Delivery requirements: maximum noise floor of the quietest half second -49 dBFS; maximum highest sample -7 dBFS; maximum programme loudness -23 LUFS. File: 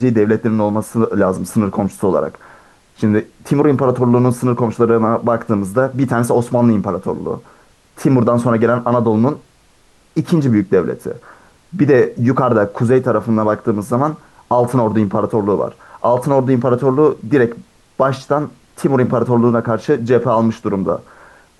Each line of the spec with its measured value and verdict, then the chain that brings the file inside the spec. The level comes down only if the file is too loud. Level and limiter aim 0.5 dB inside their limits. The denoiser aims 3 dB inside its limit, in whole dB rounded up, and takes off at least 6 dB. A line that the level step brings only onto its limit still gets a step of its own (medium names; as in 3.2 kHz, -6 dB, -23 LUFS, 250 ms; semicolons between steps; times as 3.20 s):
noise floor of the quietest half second -51 dBFS: pass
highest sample -2.5 dBFS: fail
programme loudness -15.5 LUFS: fail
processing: trim -8 dB